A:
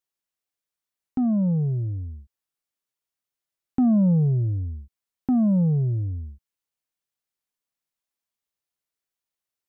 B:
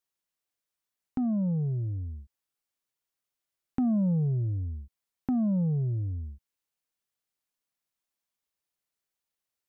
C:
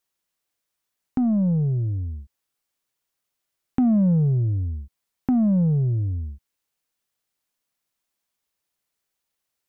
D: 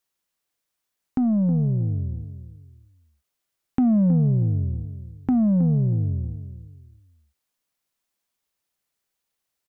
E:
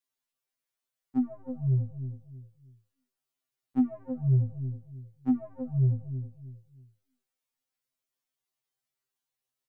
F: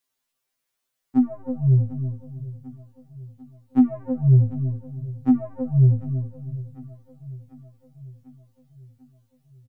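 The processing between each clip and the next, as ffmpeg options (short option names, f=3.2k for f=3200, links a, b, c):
-af "acompressor=threshold=-37dB:ratio=1.5"
-af "aeval=exprs='0.119*(cos(1*acos(clip(val(0)/0.119,-1,1)))-cos(1*PI/2))+0.00075*(cos(7*acos(clip(val(0)/0.119,-1,1)))-cos(7*PI/2))+0.000944*(cos(8*acos(clip(val(0)/0.119,-1,1)))-cos(8*PI/2))':c=same,volume=7dB"
-filter_complex "[0:a]asplit=2[a][b];[b]adelay=318,lowpass=f=990:p=1,volume=-11dB,asplit=2[c][d];[d]adelay=318,lowpass=f=990:p=1,volume=0.32,asplit=2[e][f];[f]adelay=318,lowpass=f=990:p=1,volume=0.32[g];[a][c][e][g]amix=inputs=4:normalize=0"
-af "afftfilt=real='re*2.45*eq(mod(b,6),0)':imag='im*2.45*eq(mod(b,6),0)':win_size=2048:overlap=0.75,volume=-6dB"
-af "aecho=1:1:745|1490|2235|2980|3725:0.119|0.0701|0.0414|0.0244|0.0144,volume=8.5dB"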